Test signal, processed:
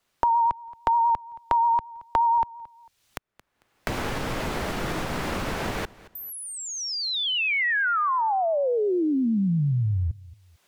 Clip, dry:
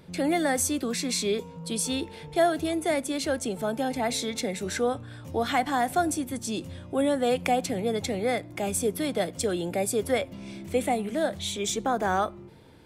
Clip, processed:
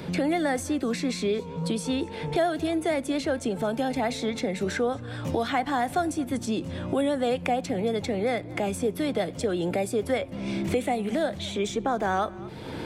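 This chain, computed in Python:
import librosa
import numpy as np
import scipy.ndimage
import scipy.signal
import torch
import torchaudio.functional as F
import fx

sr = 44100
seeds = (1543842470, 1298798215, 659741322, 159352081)

p1 = fx.recorder_agc(x, sr, target_db=-20.5, rise_db_per_s=17.0, max_gain_db=30)
p2 = fx.lowpass(p1, sr, hz=3200.0, slope=6)
p3 = fx.vibrato(p2, sr, rate_hz=8.6, depth_cents=32.0)
p4 = p3 + fx.echo_feedback(p3, sr, ms=224, feedback_pct=16, wet_db=-24.0, dry=0)
y = fx.band_squash(p4, sr, depth_pct=70)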